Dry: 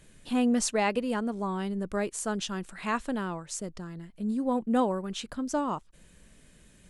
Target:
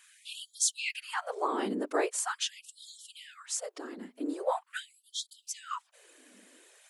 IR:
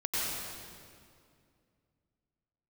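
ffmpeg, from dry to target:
-af "afftfilt=real='hypot(re,im)*cos(2*PI*random(0))':imag='hypot(re,im)*sin(2*PI*random(1))':win_size=512:overlap=0.75,aeval=exprs='val(0)+0.000631*(sin(2*PI*50*n/s)+sin(2*PI*2*50*n/s)/2+sin(2*PI*3*50*n/s)/3+sin(2*PI*4*50*n/s)/4+sin(2*PI*5*50*n/s)/5)':channel_layout=same,afftfilt=real='re*gte(b*sr/1024,210*pow(3200/210,0.5+0.5*sin(2*PI*0.43*pts/sr)))':imag='im*gte(b*sr/1024,210*pow(3200/210,0.5+0.5*sin(2*PI*0.43*pts/sr)))':win_size=1024:overlap=0.75,volume=9dB"

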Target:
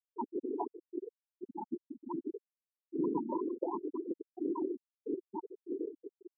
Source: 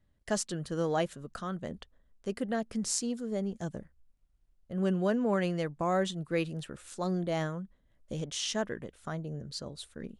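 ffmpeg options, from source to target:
ffmpeg -i in.wav -filter_complex "[0:a]afftfilt=real='real(if(between(b,1,1008),(2*floor((b-1)/24)+1)*24-b,b),0)':imag='imag(if(between(b,1,1008),(2*floor((b-1)/24)+1)*24-b,b),0)*if(between(b,1,1008),-1,1)':win_size=2048:overlap=0.75,highpass=frequency=420:width_type=q:width=4.9,asoftclip=type=tanh:threshold=-18dB,lowpass=1100,asplit=2[link_01][link_02];[link_02]adelay=260,highpass=300,lowpass=3400,asoftclip=type=hard:threshold=-29.5dB,volume=-14dB[link_03];[link_01][link_03]amix=inputs=2:normalize=0,afftfilt=real='hypot(re,im)*cos(2*PI*random(0))':imag='hypot(re,im)*sin(2*PI*random(1))':win_size=512:overlap=0.75,tremolo=f=150:d=0.667,afftfilt=real='re*gte(hypot(re,im),0.0562)':imag='im*gte(hypot(re,im),0.0562)':win_size=1024:overlap=0.75,bandreject=frequency=790:width=12,atempo=1.6,volume=5.5dB" out.wav

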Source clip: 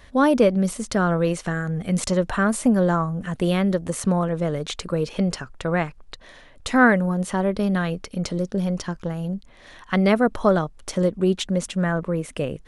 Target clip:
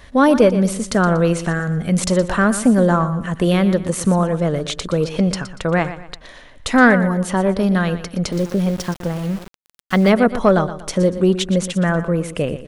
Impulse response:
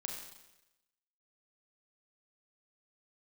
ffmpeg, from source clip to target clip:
-filter_complex "[0:a]aecho=1:1:119|238|357:0.224|0.0784|0.0274,asettb=1/sr,asplit=3[link_01][link_02][link_03];[link_01]atrim=end=8.324[link_04];[link_02]atrim=start=8.32:end=10.1,asetpts=PTS-STARTPTS,afade=type=in:duration=0.004:curve=qsin,afade=type=out:start_time=1.776:duration=0.004:curve=qsin,aeval=exprs='val(0)*gte(abs(val(0)),0.0178)':channel_layout=same[link_05];[link_03]atrim=start=10.096[link_06];[link_04][link_05]acrossfade=duration=0.004:curve1=hsin:curve2=qsin[link_07];[link_07][link_06]acrossfade=duration=0.004:curve1=qsin:curve2=hsin,acontrast=29"

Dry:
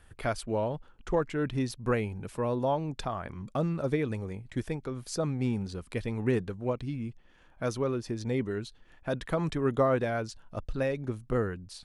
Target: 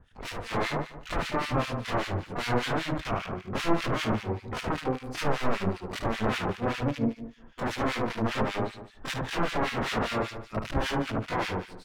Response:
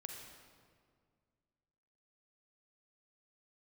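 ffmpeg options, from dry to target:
-filter_complex "[0:a]aeval=exprs='(mod(20*val(0)+1,2)-1)/20':channel_layout=same,asplit=2[link_01][link_02];[link_02]asetrate=88200,aresample=44100,atempo=0.5,volume=-2dB[link_03];[link_01][link_03]amix=inputs=2:normalize=0,asplit=2[link_04][link_05];[link_05]aecho=0:1:74|148|222|296|370|444:0.668|0.327|0.16|0.0786|0.0385|0.0189[link_06];[link_04][link_06]amix=inputs=2:normalize=0,acrossover=split=1600[link_07][link_08];[link_07]aeval=exprs='val(0)*(1-1/2+1/2*cos(2*PI*5.1*n/s))':channel_layout=same[link_09];[link_08]aeval=exprs='val(0)*(1-1/2-1/2*cos(2*PI*5.1*n/s))':channel_layout=same[link_10];[link_09][link_10]amix=inputs=2:normalize=0,aemphasis=mode=reproduction:type=75fm,dynaudnorm=framelen=120:gausssize=7:maxgain=5.5dB,adynamicequalizer=threshold=0.00316:dfrequency=4600:dqfactor=0.7:tfrequency=4600:tqfactor=0.7:attack=5:release=100:ratio=0.375:range=4:mode=cutabove:tftype=highshelf"

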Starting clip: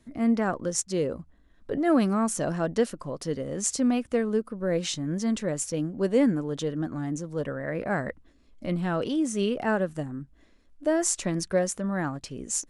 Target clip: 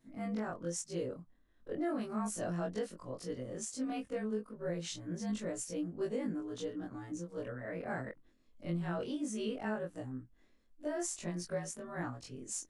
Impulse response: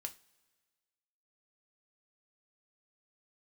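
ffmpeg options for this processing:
-af "afftfilt=real='re':imag='-im':win_size=2048:overlap=0.75,alimiter=limit=-21.5dB:level=0:latency=1:release=309,volume=-5.5dB"

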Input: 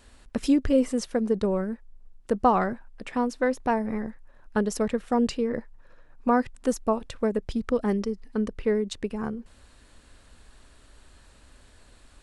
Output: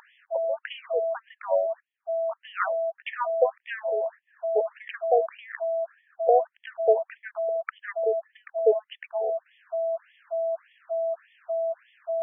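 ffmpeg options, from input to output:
ffmpeg -i in.wav -af "aeval=exprs='val(0)+0.0316*sin(2*PI*660*n/s)':channel_layout=same,afftfilt=real='re*between(b*sr/1024,560*pow(2500/560,0.5+0.5*sin(2*PI*1.7*pts/sr))/1.41,560*pow(2500/560,0.5+0.5*sin(2*PI*1.7*pts/sr))*1.41)':imag='im*between(b*sr/1024,560*pow(2500/560,0.5+0.5*sin(2*PI*1.7*pts/sr))/1.41,560*pow(2500/560,0.5+0.5*sin(2*PI*1.7*pts/sr))*1.41)':win_size=1024:overlap=0.75,volume=6.5dB" out.wav

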